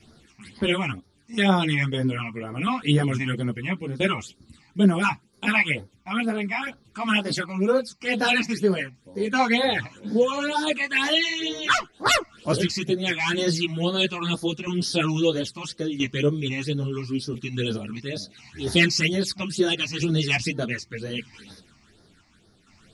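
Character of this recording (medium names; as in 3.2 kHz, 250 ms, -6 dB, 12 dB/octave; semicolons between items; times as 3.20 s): phasing stages 8, 2.1 Hz, lowest notch 430–2700 Hz; tremolo saw down 0.75 Hz, depth 55%; a shimmering, thickened sound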